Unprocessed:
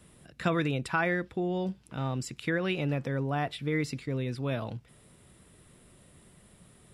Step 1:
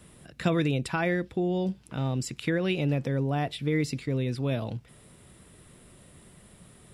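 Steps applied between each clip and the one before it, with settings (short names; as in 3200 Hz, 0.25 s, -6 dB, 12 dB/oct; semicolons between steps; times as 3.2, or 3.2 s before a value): dynamic EQ 1300 Hz, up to -8 dB, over -47 dBFS, Q 0.97; gain +4 dB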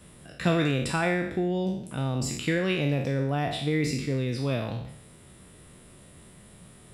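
spectral trails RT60 0.72 s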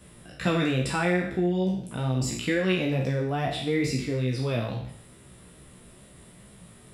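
chorus 2.3 Hz, delay 15 ms, depth 2.4 ms; gain +3.5 dB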